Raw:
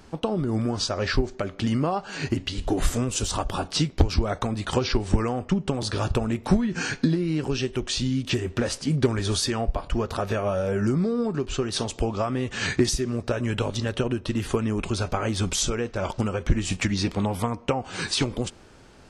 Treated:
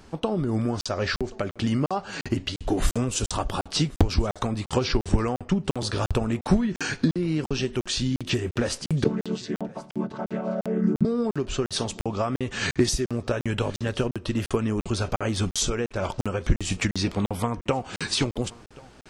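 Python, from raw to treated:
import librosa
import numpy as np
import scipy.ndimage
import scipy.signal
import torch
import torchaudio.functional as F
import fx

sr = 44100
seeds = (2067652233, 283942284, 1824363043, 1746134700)

y = fx.chord_vocoder(x, sr, chord='major triad', root=50, at=(9.04, 11.05))
y = y + 10.0 ** (-23.0 / 20.0) * np.pad(y, (int(1078 * sr / 1000.0), 0))[:len(y)]
y = fx.buffer_crackle(y, sr, first_s=0.81, period_s=0.35, block=2048, kind='zero')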